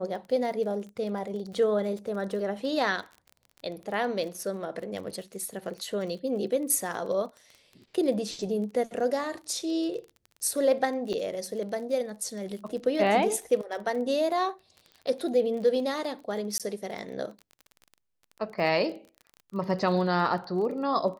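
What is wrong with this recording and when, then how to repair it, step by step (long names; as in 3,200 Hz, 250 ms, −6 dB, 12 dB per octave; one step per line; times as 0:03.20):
surface crackle 23 per second −37 dBFS
0:11.13–0:11.14: drop-out 6.3 ms
0:16.58–0:16.60: drop-out 17 ms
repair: click removal
repair the gap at 0:11.13, 6.3 ms
repair the gap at 0:16.58, 17 ms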